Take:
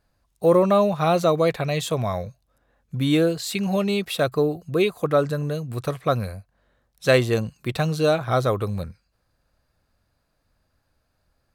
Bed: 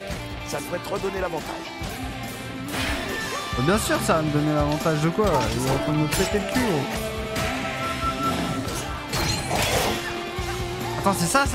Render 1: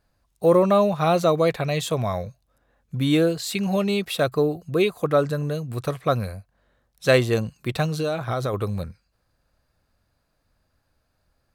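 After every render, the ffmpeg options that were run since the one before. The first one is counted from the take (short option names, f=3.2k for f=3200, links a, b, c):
-filter_complex "[0:a]asettb=1/sr,asplit=3[a][b][c];[a]atrim=end=7.854[d];[b]atrim=start=7.85:end=8.54,asetpts=PTS-STARTPTS,afade=t=in:d=0.004:c=qsin,afade=t=out:st=0.686:d=0.004:c=qsin,acompressor=threshold=-21dB:ratio=6:attack=3.2:release=140:knee=1:detection=peak[e];[c]atrim=start=8.536[f];[d][e]acrossfade=d=0.004:c1=hsin:c2=qsin[g];[g][f]acrossfade=d=0.004:c1=qsin:c2=hsin"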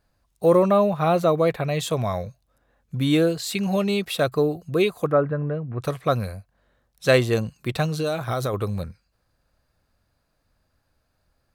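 -filter_complex "[0:a]asettb=1/sr,asplit=3[a][b][c];[a]atrim=end=0.684[d];[b]atrim=start=0.68:end=1.79,asetpts=PTS-STARTPTS,afade=t=in:d=0.004:c=qsin,afade=t=out:st=1.106:d=0.004:c=qsin,equalizer=f=5.8k:t=o:w=1.7:g=-7.5[e];[c]atrim=start=1.786[f];[d][e]acrossfade=d=0.004:c1=hsin:c2=qsin[g];[g][f]acrossfade=d=0.004:c1=qsin:c2=hsin,asplit=3[h][i][j];[h]afade=t=out:st=5.1:d=0.02[k];[i]lowpass=f=2k:w=0.5412,lowpass=f=2k:w=1.3066,afade=t=in:st=5.1:d=0.02,afade=t=out:st=5.8:d=0.02[l];[j]afade=t=in:st=5.8:d=0.02[m];[k][l][m]amix=inputs=3:normalize=0,asettb=1/sr,asplit=3[n][o][p];[n]atrim=end=8.064[q];[o]atrim=start=8.06:end=8.48,asetpts=PTS-STARTPTS,afade=t=in:d=0.004:c=qsin,afade=t=out:st=0.416:d=0.004:c=qsin,highshelf=f=7.8k:g=10.5[r];[p]atrim=start=8.476[s];[q][r]acrossfade=d=0.004:c1=hsin:c2=qsin[t];[t][s]acrossfade=d=0.004:c1=qsin:c2=hsin"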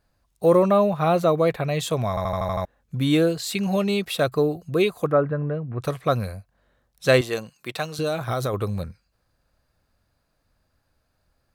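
-filter_complex "[0:a]asettb=1/sr,asplit=3[a][b][c];[a]atrim=end=7.214[d];[b]atrim=start=7.21:end=7.99,asetpts=PTS-STARTPTS,afade=t=in:d=0.004:c=qsin,afade=t=out:st=0.776:d=0.004:c=qsin,highpass=f=600:p=1[e];[c]atrim=start=7.986[f];[d][e]acrossfade=d=0.004:c1=hsin:c2=qsin[g];[g][f]acrossfade=d=0.004:c1=qsin:c2=hsin,asplit=8[h][i][j][k][l][m][n][o];[h]atrim=end=2.172[p];[i]atrim=start=2.088:end=2.172[q];[j]atrim=start=2.088:end=2.172[r];[k]atrim=start=2.088:end=2.172[s];[l]atrim=start=2.088:end=2.172[t];[m]atrim=start=2.088:end=2.172[u];[n]atrim=start=2.088:end=2.172[v];[o]atrim=start=2.648[w];[p][q]acrossfade=d=0.004:c1=hsin:c2=hsin[x];[x][r]acrossfade=d=0.004:c1=hsin:c2=hsin[y];[y][s]acrossfade=d=0.004:c1=hsin:c2=hsin[z];[z][t]acrossfade=d=0.004:c1=hsin:c2=hsin[aa];[aa][u]acrossfade=d=0.004:c1=hsin:c2=hsin[ab];[ab][v]acrossfade=d=0.004:c1=hsin:c2=hsin[ac];[ac][w]acrossfade=d=0.004:c1=hsin:c2=hsin"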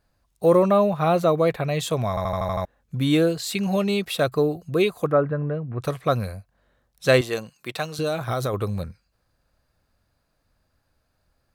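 -af anull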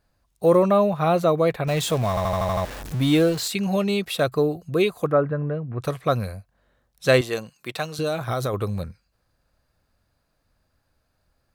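-filter_complex "[0:a]asettb=1/sr,asplit=3[a][b][c];[a]atrim=end=1.674[d];[b]atrim=start=1.67:end=3.48,asetpts=PTS-STARTPTS,afade=t=in:d=0.004:c=qsin,afade=t=out:st=1.806:d=0.004:c=qsin,aeval=exprs='val(0)+0.5*0.0335*sgn(val(0))':c=same[e];[c]atrim=start=3.476[f];[d][e]acrossfade=d=0.004:c1=hsin:c2=qsin[g];[g][f]acrossfade=d=0.004:c1=qsin:c2=hsin"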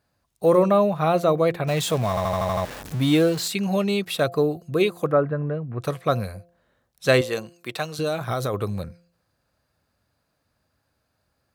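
-af "highpass=83,bandreject=f=172.5:t=h:w=4,bandreject=f=345:t=h:w=4,bandreject=f=517.5:t=h:w=4,bandreject=f=690:t=h:w=4"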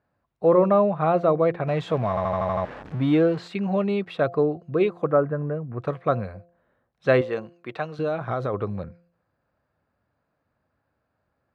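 -af "lowpass=1.8k,lowshelf=f=86:g=-7.5"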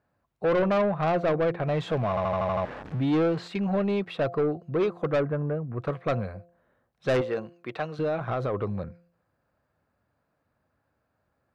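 -af "asoftclip=type=tanh:threshold=-19.5dB"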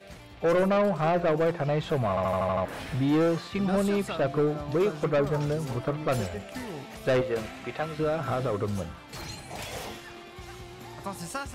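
-filter_complex "[1:a]volume=-15dB[a];[0:a][a]amix=inputs=2:normalize=0"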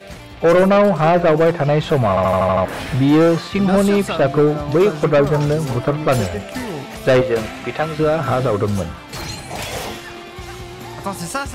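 -af "volume=11dB"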